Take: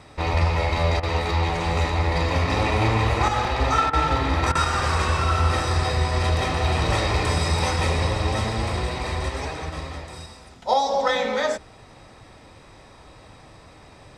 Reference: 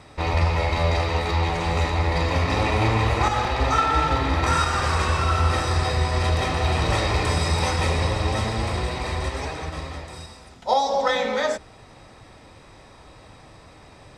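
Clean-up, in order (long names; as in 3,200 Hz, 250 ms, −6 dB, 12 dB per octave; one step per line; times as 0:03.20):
repair the gap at 0:01.00/0:03.90/0:04.52, 30 ms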